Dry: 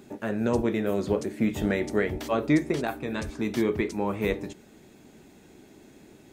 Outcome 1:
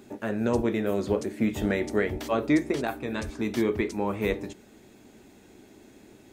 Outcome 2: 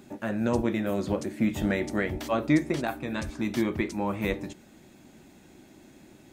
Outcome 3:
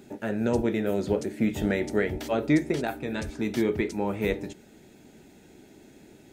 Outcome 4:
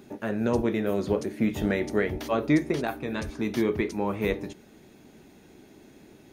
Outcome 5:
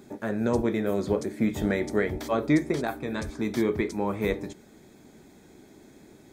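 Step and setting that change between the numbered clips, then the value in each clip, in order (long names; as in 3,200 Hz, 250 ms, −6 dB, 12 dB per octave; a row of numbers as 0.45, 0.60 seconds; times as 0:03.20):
notch filter, centre frequency: 160, 430, 1,100, 7,700, 2,800 Hertz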